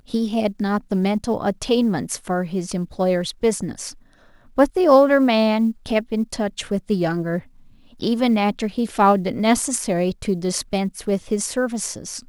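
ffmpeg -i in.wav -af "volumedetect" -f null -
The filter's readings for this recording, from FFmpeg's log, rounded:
mean_volume: -20.7 dB
max_volume: -3.5 dB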